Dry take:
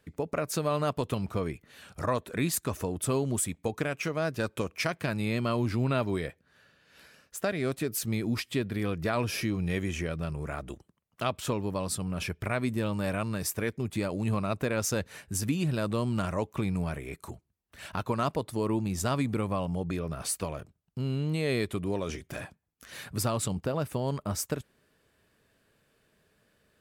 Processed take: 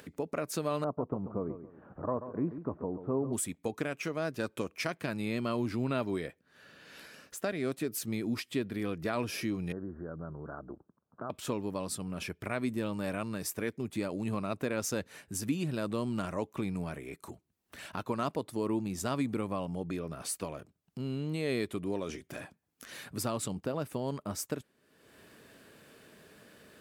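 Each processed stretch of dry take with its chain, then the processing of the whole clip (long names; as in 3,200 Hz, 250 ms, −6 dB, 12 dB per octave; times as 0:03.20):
0:00.84–0:03.33: low-pass filter 1,100 Hz 24 dB per octave + repeating echo 137 ms, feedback 30%, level −11 dB
0:09.72–0:11.30: downward compressor 2.5 to 1, threshold −32 dBFS + Butterworth low-pass 1,600 Hz 96 dB per octave
whole clip: high-pass filter 160 Hz 6 dB per octave; parametric band 280 Hz +4.5 dB 1.1 octaves; upward compression, threshold −37 dBFS; level −4.5 dB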